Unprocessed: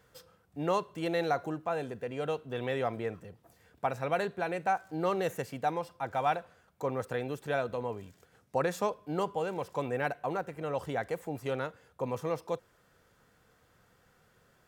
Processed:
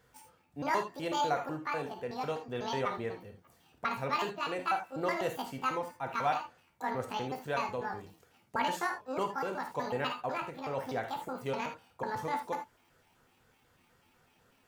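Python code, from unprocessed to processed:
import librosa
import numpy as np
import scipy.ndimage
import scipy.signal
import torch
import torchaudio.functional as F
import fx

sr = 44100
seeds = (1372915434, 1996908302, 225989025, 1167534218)

y = fx.pitch_trill(x, sr, semitones=9.5, every_ms=124)
y = fx.rev_gated(y, sr, seeds[0], gate_ms=100, shape='flat', drr_db=4.0)
y = y * librosa.db_to_amplitude(-2.5)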